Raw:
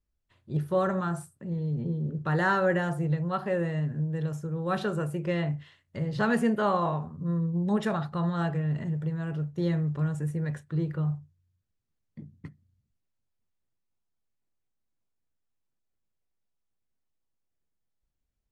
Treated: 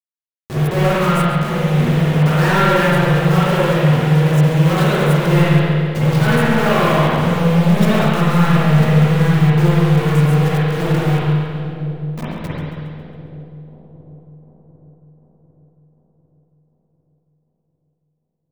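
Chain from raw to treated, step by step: companded quantiser 2-bit; two-band feedback delay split 740 Hz, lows 749 ms, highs 137 ms, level -12 dB; spring tank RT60 2.1 s, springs 46/54 ms, chirp 75 ms, DRR -9.5 dB; trim +1.5 dB

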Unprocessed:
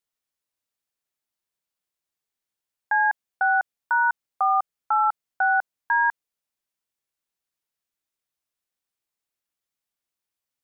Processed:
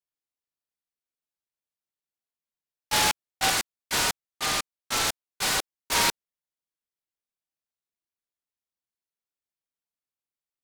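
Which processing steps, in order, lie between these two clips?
gate -22 dBFS, range -7 dB; 3.50–5.95 s: high-pass 1.1 kHz 24 dB/octave; delay time shaken by noise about 2.6 kHz, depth 0.19 ms; trim -2 dB

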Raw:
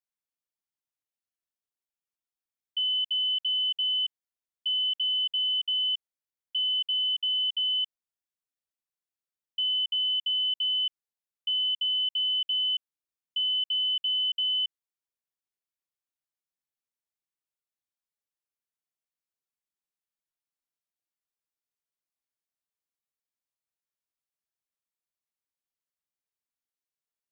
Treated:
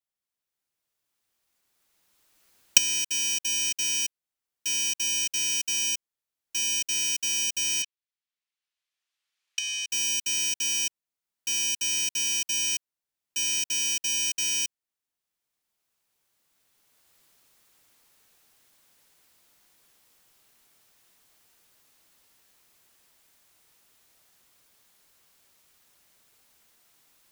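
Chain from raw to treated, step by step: bit-reversed sample order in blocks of 64 samples; recorder AGC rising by 12 dB/s; 7.82–9.90 s: band-pass filter 2.9 kHz, Q 0.99

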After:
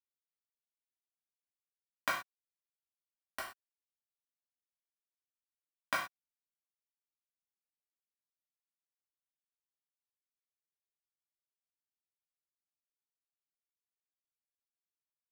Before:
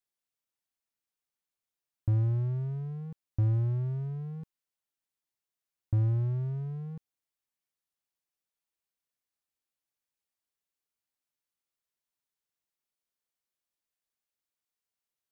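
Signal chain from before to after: recorder AGC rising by 46 dB/s; Chebyshev high-pass 1.3 kHz, order 3; bit crusher 7-bit; gated-style reverb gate 150 ms falling, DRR -5.5 dB; trim +8.5 dB

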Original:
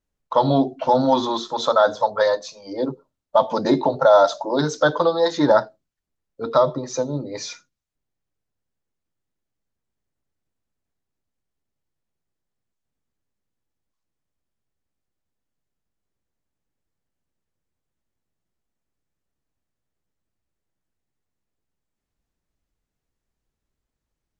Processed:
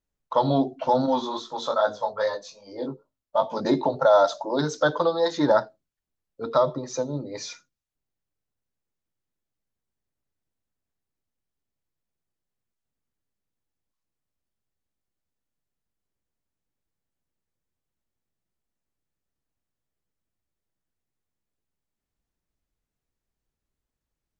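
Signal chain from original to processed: 1.06–3.61 s: chorus 2.4 Hz, delay 18.5 ms, depth 3.2 ms; trim -4 dB

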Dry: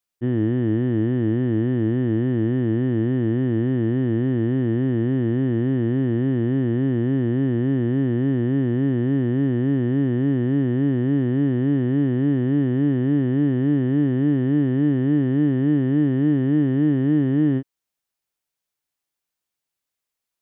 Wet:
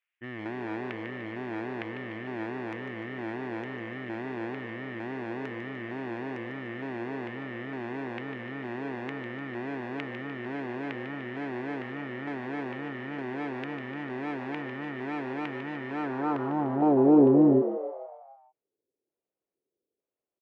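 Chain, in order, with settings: tilt EQ -2.5 dB/octave; in parallel at 0 dB: peak limiter -22 dBFS, peak gain reduction 15.5 dB; on the sum: LFO low-pass square 1.1 Hz 420–2800 Hz; hard clipper -8.5 dBFS, distortion -13 dB; band-pass sweep 2 kHz -> 410 Hz, 15.90–17.23 s; on a send: frequency-shifting echo 149 ms, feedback 52%, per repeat +83 Hz, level -9 dB

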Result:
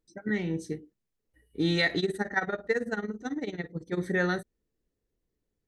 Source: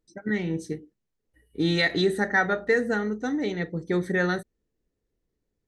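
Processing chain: 1.99–3.99 s: tremolo 18 Hz, depth 86%; trim -2.5 dB

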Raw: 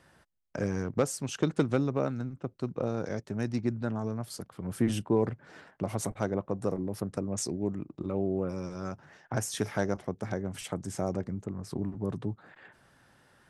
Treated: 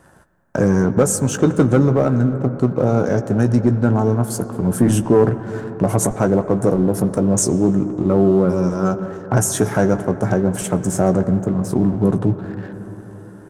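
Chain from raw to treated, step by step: high-order bell 3.2 kHz -11 dB; band-stop 1.2 kHz, Q 18; doubling 16 ms -10.5 dB; in parallel at +2 dB: peak limiter -23 dBFS, peak gain reduction 10 dB; on the sum: waveshaping leveller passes 1; reverberation RT60 5.2 s, pre-delay 74 ms, DRR 11.5 dB; trim +6 dB

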